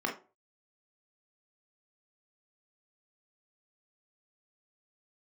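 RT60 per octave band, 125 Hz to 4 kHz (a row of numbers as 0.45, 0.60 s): 0.35, 0.35, 0.40, 0.35, 0.25, 0.20 s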